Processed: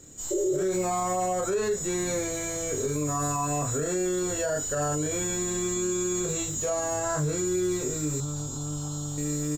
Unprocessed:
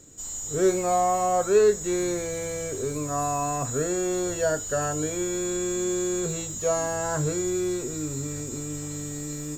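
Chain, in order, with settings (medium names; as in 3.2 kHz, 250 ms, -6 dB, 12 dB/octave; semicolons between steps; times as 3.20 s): 0.34–0.59 s: spectral replace 330–670 Hz after; doubling 27 ms -2 dB; peak limiter -19.5 dBFS, peak gain reduction 12 dB; 8.20–9.18 s: FFT filter 130 Hz 0 dB, 430 Hz -11 dB, 800 Hz +5 dB, 1.4 kHz +1 dB, 2.1 kHz -26 dB, 3.1 kHz +2 dB, 7.1 kHz -4 dB, 12 kHz -7 dB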